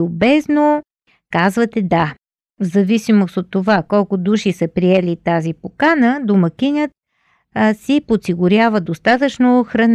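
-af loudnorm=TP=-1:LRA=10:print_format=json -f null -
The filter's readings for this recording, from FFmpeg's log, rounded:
"input_i" : "-15.4",
"input_tp" : "-2.6",
"input_lra" : "1.5",
"input_thresh" : "-25.8",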